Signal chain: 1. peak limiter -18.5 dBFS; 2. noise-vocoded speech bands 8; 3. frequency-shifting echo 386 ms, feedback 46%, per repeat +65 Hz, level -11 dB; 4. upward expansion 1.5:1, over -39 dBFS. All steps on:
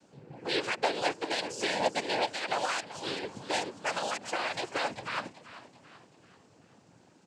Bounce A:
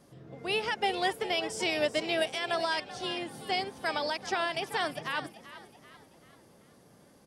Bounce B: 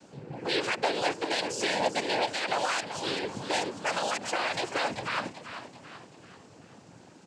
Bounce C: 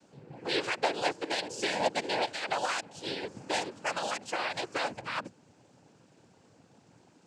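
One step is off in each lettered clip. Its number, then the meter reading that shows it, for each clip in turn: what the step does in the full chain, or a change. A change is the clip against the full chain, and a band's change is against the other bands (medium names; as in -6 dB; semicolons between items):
2, 8 kHz band -4.5 dB; 4, 125 Hz band +2.5 dB; 3, momentary loudness spread change -3 LU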